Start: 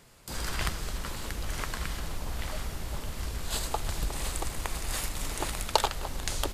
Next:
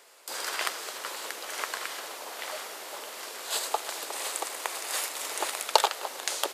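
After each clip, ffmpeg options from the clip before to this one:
-af "highpass=f=420:w=0.5412,highpass=f=420:w=1.3066,volume=3.5dB"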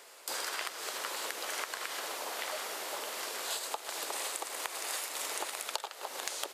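-af "acompressor=threshold=-35dB:ratio=16,volume=2dB"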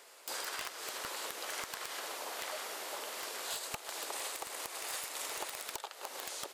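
-af "aeval=exprs='(mod(15.8*val(0)+1,2)-1)/15.8':c=same,volume=-3dB"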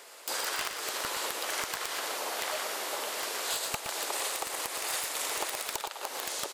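-af "aecho=1:1:118:0.398,volume=6.5dB"

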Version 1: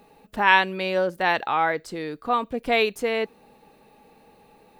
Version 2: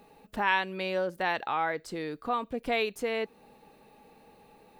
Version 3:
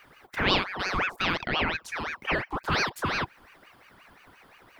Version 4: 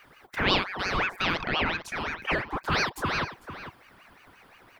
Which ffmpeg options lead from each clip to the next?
-af "acompressor=threshold=-31dB:ratio=1.5,volume=-2.5dB"
-af "aeval=exprs='val(0)*sin(2*PI*1300*n/s+1300*0.6/5.7*sin(2*PI*5.7*n/s))':c=same,volume=5dB"
-filter_complex "[0:a]asplit=2[a][b];[b]adelay=449,volume=-11dB,highshelf=f=4k:g=-10.1[c];[a][c]amix=inputs=2:normalize=0"

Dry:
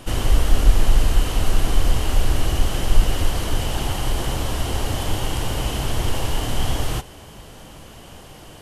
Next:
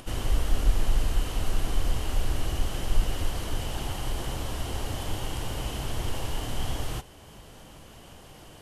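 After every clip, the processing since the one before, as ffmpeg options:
-af "acompressor=mode=upward:threshold=-34dB:ratio=2.5,volume=-8.5dB"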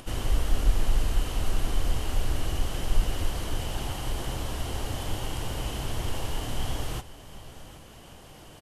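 -af "aecho=1:1:766:0.133"

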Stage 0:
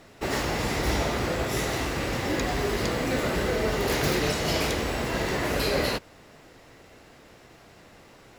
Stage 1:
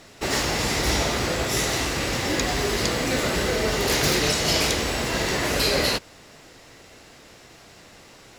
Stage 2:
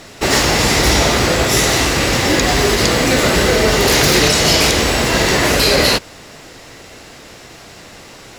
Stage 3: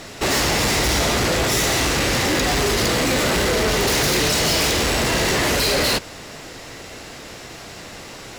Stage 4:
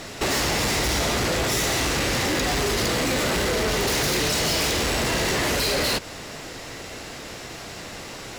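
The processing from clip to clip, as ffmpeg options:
-af "equalizer=f=6.3k:w=0.46:g=8,volume=1.5dB"
-af "alimiter=level_in=11.5dB:limit=-1dB:release=50:level=0:latency=1,volume=-1dB"
-af "asoftclip=type=tanh:threshold=-17.5dB,volume=1dB"
-af "acompressor=threshold=-22dB:ratio=6"

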